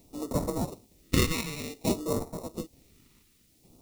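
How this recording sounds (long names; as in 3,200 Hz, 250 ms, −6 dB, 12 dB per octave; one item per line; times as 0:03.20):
aliases and images of a low sample rate 1,600 Hz, jitter 0%
chopped level 1.1 Hz, depth 60%, duty 55%
a quantiser's noise floor 12 bits, dither triangular
phaser sweep stages 2, 0.55 Hz, lowest notch 640–2,500 Hz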